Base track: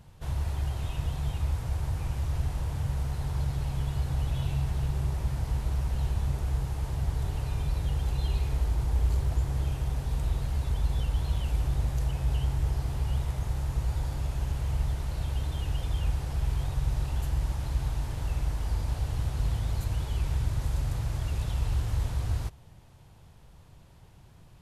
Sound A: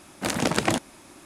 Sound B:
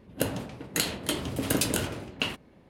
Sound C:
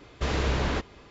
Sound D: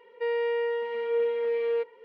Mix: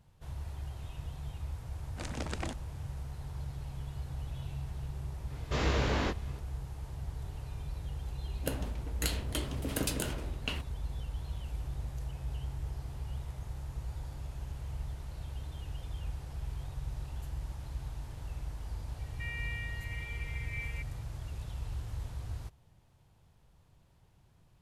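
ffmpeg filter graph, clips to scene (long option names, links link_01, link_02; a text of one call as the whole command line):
ffmpeg -i bed.wav -i cue0.wav -i cue1.wav -i cue2.wav -i cue3.wav -filter_complex "[0:a]volume=-10.5dB[link_01];[1:a]lowpass=frequency=9100:width=0.5412,lowpass=frequency=9100:width=1.3066[link_02];[3:a]flanger=delay=19:depth=3:speed=2.8[link_03];[4:a]highpass=frequency=2200:width_type=q:width=13[link_04];[link_02]atrim=end=1.25,asetpts=PTS-STARTPTS,volume=-16dB,afade=type=in:duration=0.004:curve=hsin,afade=type=out:start_time=1.246:duration=0.004:curve=hsin,adelay=1750[link_05];[link_03]atrim=end=1.1,asetpts=PTS-STARTPTS,afade=type=in:duration=0.004:curve=hsin,afade=type=out:start_time=1.096:duration=0.004:curve=hsin,adelay=5300[link_06];[2:a]atrim=end=2.69,asetpts=PTS-STARTPTS,volume=-7.5dB,afade=type=in:duration=0.004:curve=hsin,afade=type=out:start_time=2.686:duration=0.004:curve=hsin,adelay=364266S[link_07];[link_04]atrim=end=2.04,asetpts=PTS-STARTPTS,volume=-12dB,afade=type=in:duration=0.004:curve=hsin,afade=type=out:start_time=2.036:duration=0.004:curve=hsin,adelay=18990[link_08];[link_01][link_05][link_06][link_07][link_08]amix=inputs=5:normalize=0" out.wav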